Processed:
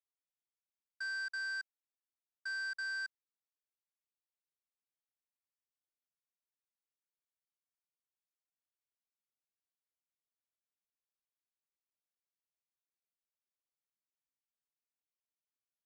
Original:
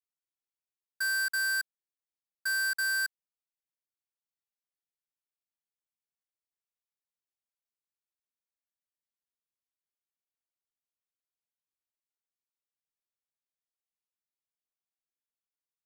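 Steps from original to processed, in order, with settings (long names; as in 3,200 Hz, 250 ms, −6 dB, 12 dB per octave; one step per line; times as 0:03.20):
transistor ladder low-pass 7,300 Hz, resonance 45%
bass and treble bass −4 dB, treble −10 dB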